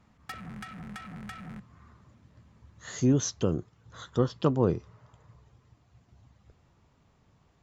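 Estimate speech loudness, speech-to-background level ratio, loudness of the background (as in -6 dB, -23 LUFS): -28.5 LUFS, 14.5 dB, -43.0 LUFS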